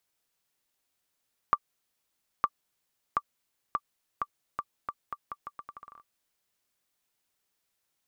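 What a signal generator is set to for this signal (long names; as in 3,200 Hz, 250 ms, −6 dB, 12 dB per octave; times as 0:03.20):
bouncing ball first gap 0.91 s, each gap 0.8, 1,170 Hz, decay 51 ms −10.5 dBFS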